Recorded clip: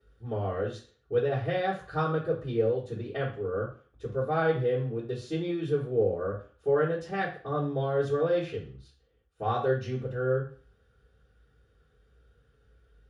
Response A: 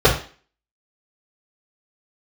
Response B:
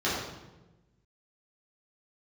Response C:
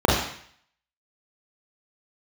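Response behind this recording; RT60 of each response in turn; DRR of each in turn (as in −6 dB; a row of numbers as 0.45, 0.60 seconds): A; 0.40, 1.1, 0.60 seconds; −9.0, −9.5, −4.0 decibels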